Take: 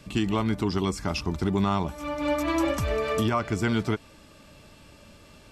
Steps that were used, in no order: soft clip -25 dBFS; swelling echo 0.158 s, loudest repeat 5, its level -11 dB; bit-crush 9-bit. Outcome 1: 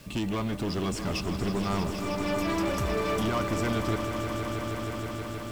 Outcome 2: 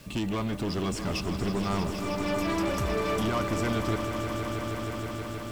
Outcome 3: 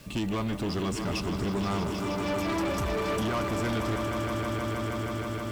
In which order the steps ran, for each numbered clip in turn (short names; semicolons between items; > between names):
soft clip > bit-crush > swelling echo; bit-crush > soft clip > swelling echo; bit-crush > swelling echo > soft clip